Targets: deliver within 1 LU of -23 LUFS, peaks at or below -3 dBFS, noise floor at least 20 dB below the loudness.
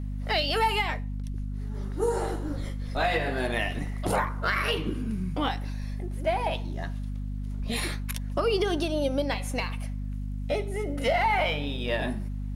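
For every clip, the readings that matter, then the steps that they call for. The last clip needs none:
ticks 17/s; hum 50 Hz; harmonics up to 250 Hz; hum level -30 dBFS; loudness -29.0 LUFS; peak -14.0 dBFS; loudness target -23.0 LUFS
-> de-click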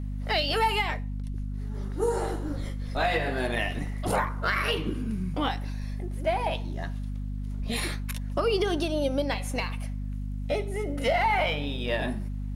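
ticks 0.080/s; hum 50 Hz; harmonics up to 250 Hz; hum level -30 dBFS
-> de-hum 50 Hz, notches 5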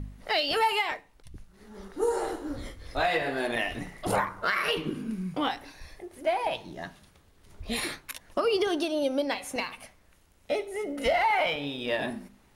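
hum none; loudness -29.5 LUFS; peak -13.5 dBFS; loudness target -23.0 LUFS
-> gain +6.5 dB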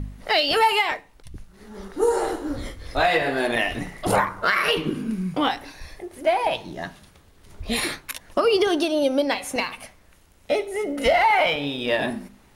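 loudness -23.0 LUFS; peak -7.0 dBFS; noise floor -54 dBFS

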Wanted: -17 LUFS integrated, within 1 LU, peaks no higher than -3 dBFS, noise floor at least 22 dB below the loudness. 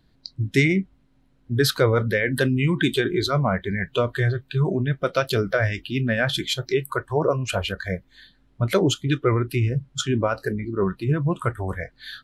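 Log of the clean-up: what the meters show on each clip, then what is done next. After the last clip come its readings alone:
loudness -23.5 LUFS; peak -7.5 dBFS; loudness target -17.0 LUFS
-> gain +6.5 dB; limiter -3 dBFS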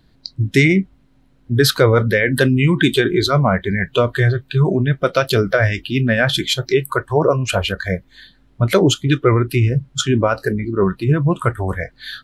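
loudness -17.0 LUFS; peak -3.0 dBFS; noise floor -54 dBFS

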